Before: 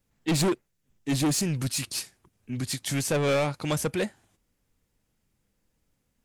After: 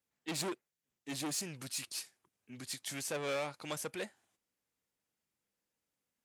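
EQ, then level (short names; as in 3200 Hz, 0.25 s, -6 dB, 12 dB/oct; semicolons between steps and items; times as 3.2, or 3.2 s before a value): HPF 520 Hz 6 dB/oct; -9.0 dB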